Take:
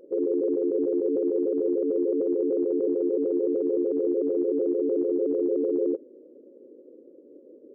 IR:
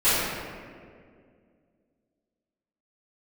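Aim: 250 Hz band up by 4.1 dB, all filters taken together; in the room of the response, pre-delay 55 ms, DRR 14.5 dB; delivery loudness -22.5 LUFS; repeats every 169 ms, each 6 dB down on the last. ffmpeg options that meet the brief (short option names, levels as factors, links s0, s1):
-filter_complex "[0:a]equalizer=f=250:t=o:g=6,aecho=1:1:169|338|507|676|845|1014:0.501|0.251|0.125|0.0626|0.0313|0.0157,asplit=2[s0][s1];[1:a]atrim=start_sample=2205,adelay=55[s2];[s1][s2]afir=irnorm=-1:irlink=0,volume=0.0224[s3];[s0][s3]amix=inputs=2:normalize=0,volume=0.944"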